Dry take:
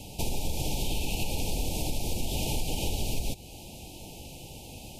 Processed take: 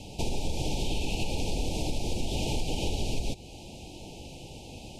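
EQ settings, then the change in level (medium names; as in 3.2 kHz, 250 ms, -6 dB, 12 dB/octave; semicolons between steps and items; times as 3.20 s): low-pass 7 kHz 12 dB/octave; dynamic bell 370 Hz, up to +3 dB, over -51 dBFS, Q 1.1; 0.0 dB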